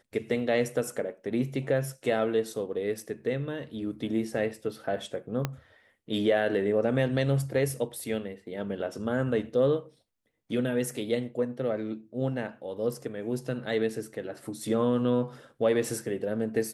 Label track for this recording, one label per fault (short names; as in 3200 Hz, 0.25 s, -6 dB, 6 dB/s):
5.450000	5.450000	pop -14 dBFS